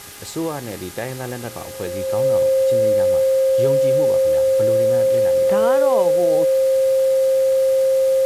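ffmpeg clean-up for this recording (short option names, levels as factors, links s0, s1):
-af "adeclick=t=4,bandreject=f=408.2:t=h:w=4,bandreject=f=816.4:t=h:w=4,bandreject=f=1224.6:t=h:w=4,bandreject=f=1632.8:t=h:w=4,bandreject=f=2041:t=h:w=4,bandreject=f=530:w=30,afwtdn=0.014"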